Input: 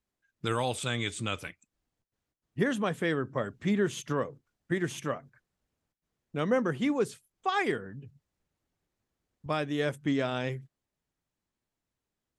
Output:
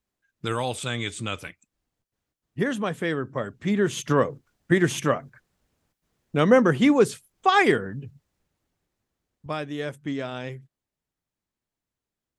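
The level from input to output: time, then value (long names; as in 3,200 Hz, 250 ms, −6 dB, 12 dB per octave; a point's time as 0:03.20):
0:03.64 +2.5 dB
0:04.19 +10 dB
0:07.79 +10 dB
0:09.87 −1.5 dB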